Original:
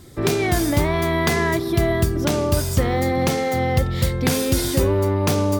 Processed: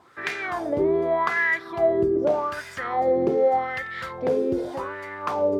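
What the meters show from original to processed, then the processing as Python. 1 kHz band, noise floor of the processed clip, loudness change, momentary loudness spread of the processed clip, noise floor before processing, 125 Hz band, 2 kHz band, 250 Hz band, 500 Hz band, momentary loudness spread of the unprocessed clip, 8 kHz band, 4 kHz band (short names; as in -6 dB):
-0.5 dB, -41 dBFS, -4.0 dB, 10 LU, -25 dBFS, -20.5 dB, 0.0 dB, -7.0 dB, -0.5 dB, 2 LU, under -20 dB, -14.5 dB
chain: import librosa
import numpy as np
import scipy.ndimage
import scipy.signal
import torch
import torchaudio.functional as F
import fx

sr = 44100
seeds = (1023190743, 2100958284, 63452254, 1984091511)

y = fx.rider(x, sr, range_db=10, speed_s=0.5)
y = fx.quant_dither(y, sr, seeds[0], bits=8, dither='none')
y = fx.wah_lfo(y, sr, hz=0.84, low_hz=380.0, high_hz=1900.0, q=4.6)
y = y * librosa.db_to_amplitude(7.5)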